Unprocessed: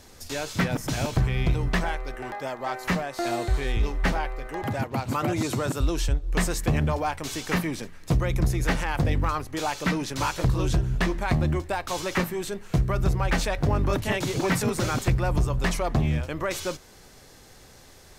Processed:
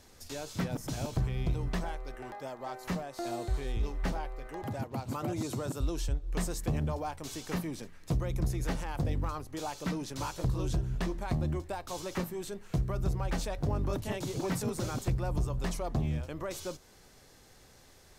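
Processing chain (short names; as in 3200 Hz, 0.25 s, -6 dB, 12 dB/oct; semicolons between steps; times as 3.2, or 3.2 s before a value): dynamic EQ 2000 Hz, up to -8 dB, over -43 dBFS, Q 0.89; gain -7.5 dB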